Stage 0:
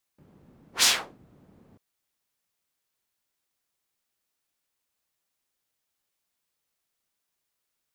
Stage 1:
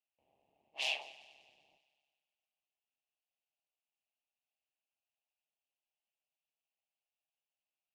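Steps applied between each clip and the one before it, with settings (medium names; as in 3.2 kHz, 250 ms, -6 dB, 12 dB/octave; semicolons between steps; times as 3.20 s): two resonant band-passes 1.4 kHz, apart 1.9 oct; multi-head delay 98 ms, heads first and second, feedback 56%, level -22.5 dB; ring modulator 70 Hz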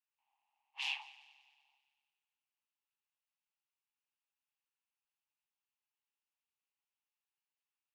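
steep high-pass 850 Hz 72 dB/octave; treble shelf 2.7 kHz -11.5 dB; trim +3.5 dB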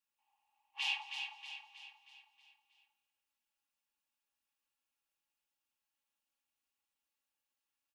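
band-stop 2.1 kHz, Q 16; comb 3.6 ms, depth 64%; on a send: feedback delay 317 ms, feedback 49%, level -6.5 dB; on the sum: trim +1 dB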